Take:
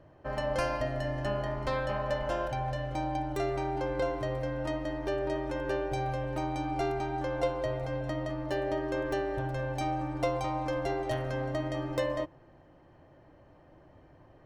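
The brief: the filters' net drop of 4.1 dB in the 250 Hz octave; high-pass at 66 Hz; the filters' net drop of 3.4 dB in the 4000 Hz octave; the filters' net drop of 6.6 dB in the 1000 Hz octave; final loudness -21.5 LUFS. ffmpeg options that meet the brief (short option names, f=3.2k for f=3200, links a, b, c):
-af "highpass=66,equalizer=f=250:t=o:g=-5,equalizer=f=1k:t=o:g=-9,equalizer=f=4k:t=o:g=-4,volume=15dB"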